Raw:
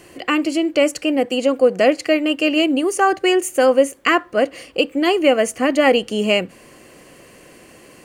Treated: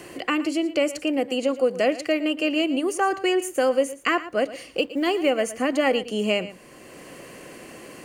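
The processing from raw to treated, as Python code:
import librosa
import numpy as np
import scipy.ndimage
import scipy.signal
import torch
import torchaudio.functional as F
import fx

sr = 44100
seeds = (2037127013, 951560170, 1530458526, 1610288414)

y = fx.law_mismatch(x, sr, coded='A', at=(4.77, 5.3))
y = y + 10.0 ** (-16.0 / 20.0) * np.pad(y, (int(114 * sr / 1000.0), 0))[:len(y)]
y = fx.band_squash(y, sr, depth_pct=40)
y = F.gain(torch.from_numpy(y), -6.5).numpy()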